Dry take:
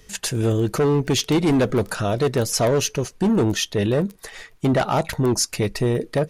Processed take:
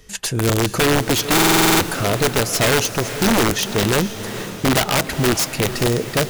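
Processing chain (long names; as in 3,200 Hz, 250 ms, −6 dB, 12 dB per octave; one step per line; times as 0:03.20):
wrap-around overflow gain 14 dB
feedback delay with all-pass diffusion 469 ms, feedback 55%, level −11.5 dB
buffer that repeats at 0:01.34, samples 2,048, times 9
level +2 dB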